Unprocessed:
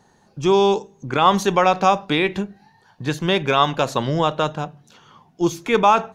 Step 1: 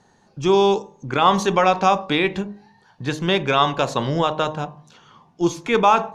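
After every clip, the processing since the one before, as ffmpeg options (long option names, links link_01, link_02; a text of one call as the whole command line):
ffmpeg -i in.wav -af "lowpass=9100,bandreject=frequency=51.39:width_type=h:width=4,bandreject=frequency=102.78:width_type=h:width=4,bandreject=frequency=154.17:width_type=h:width=4,bandreject=frequency=205.56:width_type=h:width=4,bandreject=frequency=256.95:width_type=h:width=4,bandreject=frequency=308.34:width_type=h:width=4,bandreject=frequency=359.73:width_type=h:width=4,bandreject=frequency=411.12:width_type=h:width=4,bandreject=frequency=462.51:width_type=h:width=4,bandreject=frequency=513.9:width_type=h:width=4,bandreject=frequency=565.29:width_type=h:width=4,bandreject=frequency=616.68:width_type=h:width=4,bandreject=frequency=668.07:width_type=h:width=4,bandreject=frequency=719.46:width_type=h:width=4,bandreject=frequency=770.85:width_type=h:width=4,bandreject=frequency=822.24:width_type=h:width=4,bandreject=frequency=873.63:width_type=h:width=4,bandreject=frequency=925.02:width_type=h:width=4,bandreject=frequency=976.41:width_type=h:width=4,bandreject=frequency=1027.8:width_type=h:width=4,bandreject=frequency=1079.19:width_type=h:width=4,bandreject=frequency=1130.58:width_type=h:width=4,bandreject=frequency=1181.97:width_type=h:width=4" out.wav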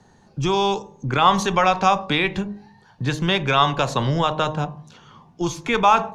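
ffmpeg -i in.wav -filter_complex "[0:a]acrossover=split=130|670|3800[link_01][link_02][link_03][link_04];[link_02]acompressor=threshold=-28dB:ratio=6[link_05];[link_01][link_05][link_03][link_04]amix=inputs=4:normalize=0,lowshelf=frequency=210:gain=8,volume=1dB" out.wav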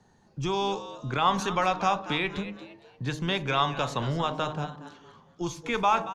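ffmpeg -i in.wav -filter_complex "[0:a]asplit=4[link_01][link_02][link_03][link_04];[link_02]adelay=231,afreqshift=130,volume=-13.5dB[link_05];[link_03]adelay=462,afreqshift=260,volume=-23.4dB[link_06];[link_04]adelay=693,afreqshift=390,volume=-33.3dB[link_07];[link_01][link_05][link_06][link_07]amix=inputs=4:normalize=0,volume=-8dB" out.wav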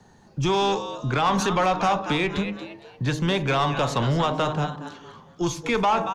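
ffmpeg -i in.wav -filter_complex "[0:a]acrossover=split=560|840[link_01][link_02][link_03];[link_03]alimiter=limit=-23dB:level=0:latency=1:release=129[link_04];[link_01][link_02][link_04]amix=inputs=3:normalize=0,asoftclip=type=tanh:threshold=-22.5dB,volume=8dB" out.wav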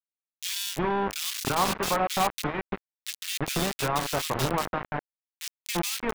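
ffmpeg -i in.wav -filter_complex "[0:a]aeval=exprs='0.188*(cos(1*acos(clip(val(0)/0.188,-1,1)))-cos(1*PI/2))+0.0473*(cos(3*acos(clip(val(0)/0.188,-1,1)))-cos(3*PI/2))':channel_layout=same,acrusher=bits=3:mix=0:aa=0.000001,acrossover=split=2200[link_01][link_02];[link_01]adelay=340[link_03];[link_03][link_02]amix=inputs=2:normalize=0,volume=-1.5dB" out.wav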